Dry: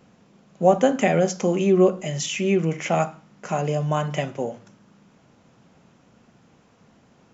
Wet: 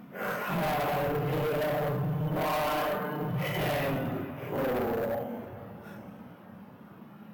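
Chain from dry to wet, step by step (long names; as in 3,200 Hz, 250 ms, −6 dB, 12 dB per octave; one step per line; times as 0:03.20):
low-pass filter 2,600 Hz 12 dB per octave
mains-hum notches 50/100/150 Hz
in parallel at −1 dB: downward compressor, threshold −33 dBFS, peak gain reduction 20.5 dB
on the sum: extreme stretch with random phases 4.6×, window 0.05 s, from 0:03.39
bad sample-rate conversion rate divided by 3×, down none, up hold
gain into a clipping stage and back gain 27.5 dB
feedback echo with a band-pass in the loop 441 ms, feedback 72%, band-pass 990 Hz, level −17 dB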